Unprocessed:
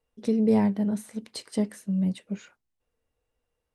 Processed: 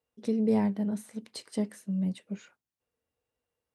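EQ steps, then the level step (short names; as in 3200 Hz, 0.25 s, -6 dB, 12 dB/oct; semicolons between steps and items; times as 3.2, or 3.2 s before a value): HPF 87 Hz; -4.0 dB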